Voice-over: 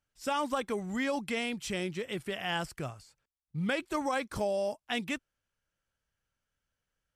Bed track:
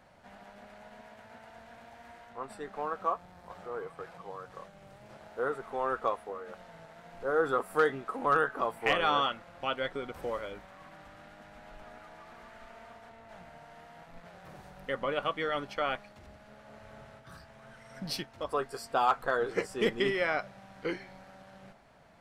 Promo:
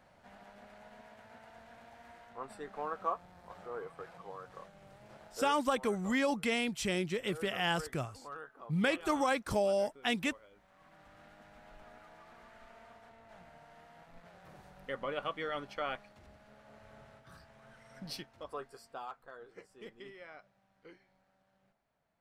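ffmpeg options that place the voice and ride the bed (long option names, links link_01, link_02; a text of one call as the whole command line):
ffmpeg -i stem1.wav -i stem2.wav -filter_complex "[0:a]adelay=5150,volume=1dB[link_01];[1:a]volume=11dB,afade=type=out:start_time=5.22:duration=0.37:silence=0.149624,afade=type=in:start_time=10.51:duration=0.73:silence=0.188365,afade=type=out:start_time=17.86:duration=1.31:silence=0.158489[link_02];[link_01][link_02]amix=inputs=2:normalize=0" out.wav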